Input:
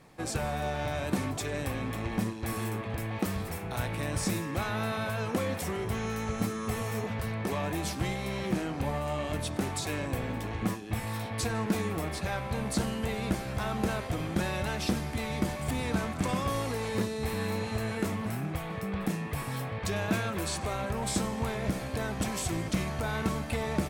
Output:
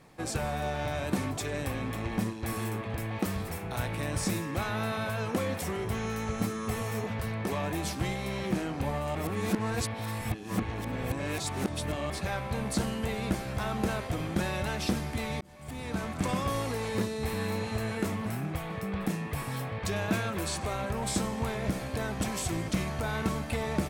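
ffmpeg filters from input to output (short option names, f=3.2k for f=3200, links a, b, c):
-filter_complex "[0:a]asplit=4[a][b][c][d];[a]atrim=end=9.152[e];[b]atrim=start=9.148:end=12.102,asetpts=PTS-STARTPTS,areverse[f];[c]atrim=start=12.098:end=15.41,asetpts=PTS-STARTPTS,afade=t=out:st=3.308:d=0.004:c=hsin[g];[d]atrim=start=15.41,asetpts=PTS-STARTPTS,afade=t=in:d=0.83[h];[e][f]acrossfade=d=0.004:c1=hsin:c2=hsin[i];[g][h]concat=n=2:v=0:a=1[j];[i][j]acrossfade=d=0.004:c1=hsin:c2=hsin"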